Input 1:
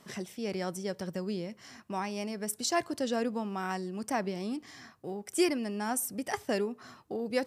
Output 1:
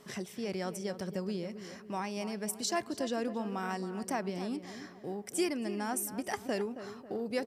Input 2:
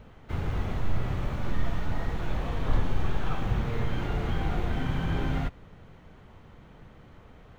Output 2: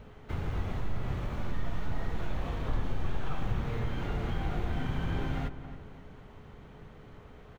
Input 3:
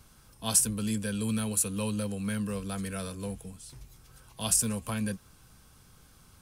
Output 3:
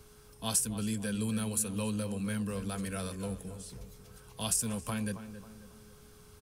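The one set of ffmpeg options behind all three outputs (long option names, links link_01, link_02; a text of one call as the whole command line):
ffmpeg -i in.wav -filter_complex "[0:a]acompressor=threshold=-35dB:ratio=1.5,asplit=2[link_01][link_02];[link_02]adelay=272,lowpass=frequency=1800:poles=1,volume=-11dB,asplit=2[link_03][link_04];[link_04]adelay=272,lowpass=frequency=1800:poles=1,volume=0.47,asplit=2[link_05][link_06];[link_06]adelay=272,lowpass=frequency=1800:poles=1,volume=0.47,asplit=2[link_07][link_08];[link_08]adelay=272,lowpass=frequency=1800:poles=1,volume=0.47,asplit=2[link_09][link_10];[link_10]adelay=272,lowpass=frequency=1800:poles=1,volume=0.47[link_11];[link_01][link_03][link_05][link_07][link_09][link_11]amix=inputs=6:normalize=0,aeval=exprs='val(0)+0.001*sin(2*PI*420*n/s)':channel_layout=same" out.wav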